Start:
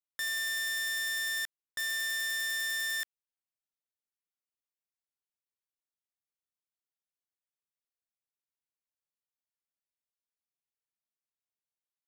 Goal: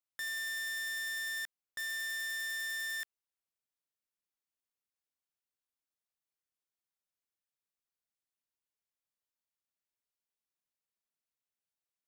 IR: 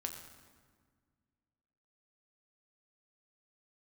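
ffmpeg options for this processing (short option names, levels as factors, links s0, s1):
-af "asoftclip=type=tanh:threshold=0.0237,volume=0.841"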